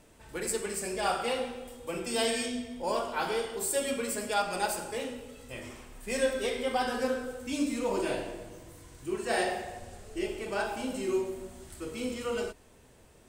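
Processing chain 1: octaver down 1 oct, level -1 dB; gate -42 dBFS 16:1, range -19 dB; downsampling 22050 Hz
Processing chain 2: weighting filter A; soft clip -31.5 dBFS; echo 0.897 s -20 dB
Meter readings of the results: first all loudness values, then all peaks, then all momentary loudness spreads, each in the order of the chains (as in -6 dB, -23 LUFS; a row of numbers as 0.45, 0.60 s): -32.0, -38.0 LUFS; -15.0, -30.5 dBFS; 14, 12 LU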